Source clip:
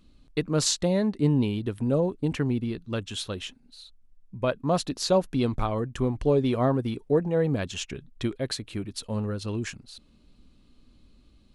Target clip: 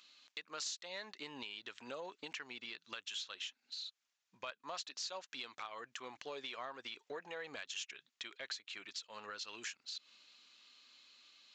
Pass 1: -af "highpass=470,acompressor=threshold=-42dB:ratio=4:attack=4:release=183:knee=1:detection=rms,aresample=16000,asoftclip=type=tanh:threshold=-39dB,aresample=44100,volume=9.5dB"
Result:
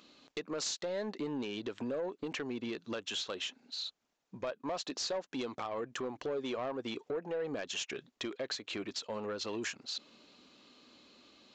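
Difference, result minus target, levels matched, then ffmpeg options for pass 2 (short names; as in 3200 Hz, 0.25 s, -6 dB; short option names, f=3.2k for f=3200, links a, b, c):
compressor: peak gain reduction -6.5 dB; 500 Hz band +6.5 dB
-af "highpass=1.7k,acompressor=threshold=-51dB:ratio=4:attack=4:release=183:knee=1:detection=rms,aresample=16000,asoftclip=type=tanh:threshold=-39dB,aresample=44100,volume=9.5dB"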